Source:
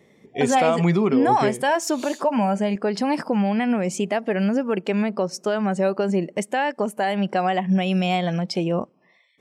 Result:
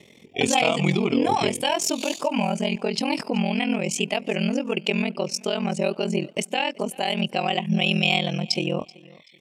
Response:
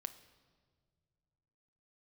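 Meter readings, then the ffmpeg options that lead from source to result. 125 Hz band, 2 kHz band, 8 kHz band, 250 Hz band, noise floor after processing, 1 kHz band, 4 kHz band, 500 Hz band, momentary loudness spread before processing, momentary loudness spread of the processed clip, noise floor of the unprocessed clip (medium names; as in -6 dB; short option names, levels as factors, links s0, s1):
-2.0 dB, +1.5 dB, +4.0 dB, -3.5 dB, -52 dBFS, -4.0 dB, +8.0 dB, -3.5 dB, 6 LU, 6 LU, -59 dBFS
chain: -af "highshelf=f=2100:t=q:w=3:g=7,acompressor=mode=upward:threshold=0.00794:ratio=2.5,aeval=exprs='val(0)*sin(2*PI*21*n/s)':c=same,aecho=1:1:381|762:0.0708|0.0212"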